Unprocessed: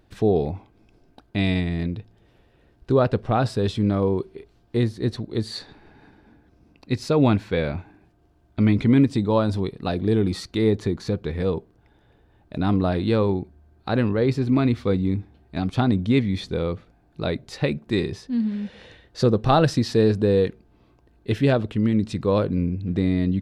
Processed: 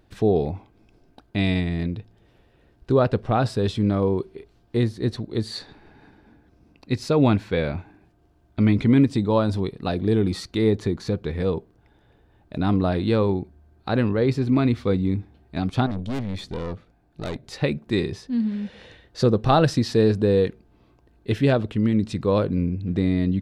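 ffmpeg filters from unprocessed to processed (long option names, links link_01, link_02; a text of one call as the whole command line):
ffmpeg -i in.wav -filter_complex "[0:a]asettb=1/sr,asplit=3[link_01][link_02][link_03];[link_01]atrim=end=15.864[link_04];[link_02]atrim=start=15.86:end=17.44,asetpts=PTS-STARTPTS,afade=type=in:duration=0.004:curve=qsin,afade=type=out:start_time=1.576:duration=0.004:curve=qsin,aeval=exprs='(tanh(17.8*val(0)+0.6)-tanh(0.6))/17.8':channel_layout=same[link_05];[link_03]atrim=start=17.436[link_06];[link_04][link_05]acrossfade=duration=0.004:curve1=hsin:curve2=qsin[link_07];[link_07][link_06]acrossfade=duration=0.004:curve1=qsin:curve2=hsin" out.wav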